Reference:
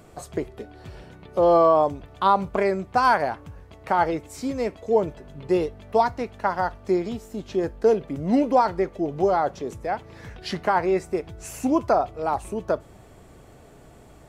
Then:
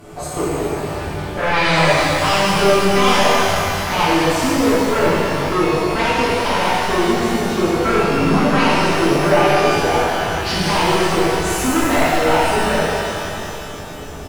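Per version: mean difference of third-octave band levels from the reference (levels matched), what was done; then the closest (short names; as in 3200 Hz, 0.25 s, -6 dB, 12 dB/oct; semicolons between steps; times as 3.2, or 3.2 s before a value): 16.0 dB: in parallel at -2 dB: compressor, threshold -26 dBFS, peak gain reduction 12.5 dB; on the sum: sine folder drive 11 dB, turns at -6 dBFS; doubler 12 ms -11 dB; shimmer reverb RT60 2.8 s, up +12 st, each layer -8 dB, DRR -10.5 dB; gain -15.5 dB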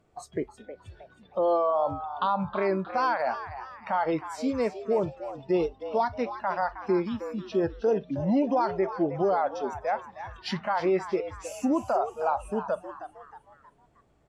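7.0 dB: limiter -16.5 dBFS, peak gain reduction 8.5 dB; spectral noise reduction 17 dB; air absorption 55 m; frequency-shifting echo 0.315 s, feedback 42%, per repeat +130 Hz, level -12 dB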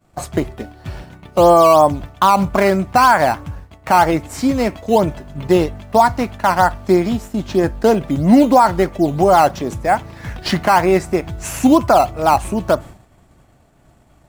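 5.0 dB: bell 440 Hz -10 dB 0.51 oct; expander -39 dBFS; in parallel at -8.5 dB: decimation with a swept rate 9×, swing 100% 3.1 Hz; on the sum: maximiser +11.5 dB; gain -1 dB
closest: third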